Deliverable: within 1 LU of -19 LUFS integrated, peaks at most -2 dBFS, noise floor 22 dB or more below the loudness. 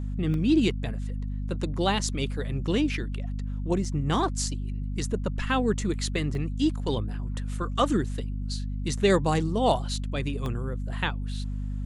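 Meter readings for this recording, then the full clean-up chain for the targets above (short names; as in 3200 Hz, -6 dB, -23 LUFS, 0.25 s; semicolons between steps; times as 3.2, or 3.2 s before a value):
dropouts 4; longest dropout 1.2 ms; hum 50 Hz; harmonics up to 250 Hz; hum level -28 dBFS; loudness -28.0 LUFS; peak -9.5 dBFS; loudness target -19.0 LUFS
-> interpolate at 0.34/3.85/6.35/10.46, 1.2 ms; de-hum 50 Hz, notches 5; gain +9 dB; limiter -2 dBFS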